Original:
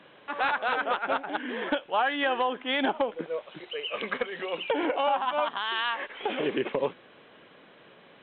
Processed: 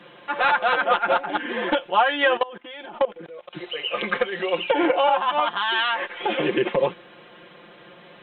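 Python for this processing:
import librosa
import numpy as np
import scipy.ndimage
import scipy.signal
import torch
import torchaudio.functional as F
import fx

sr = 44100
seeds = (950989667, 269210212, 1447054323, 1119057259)

y = x + 0.99 * np.pad(x, (int(5.7 * sr / 1000.0), 0))[:len(x)]
y = fx.level_steps(y, sr, step_db=21, at=(2.37, 3.53))
y = y * librosa.db_to_amplitude(4.0)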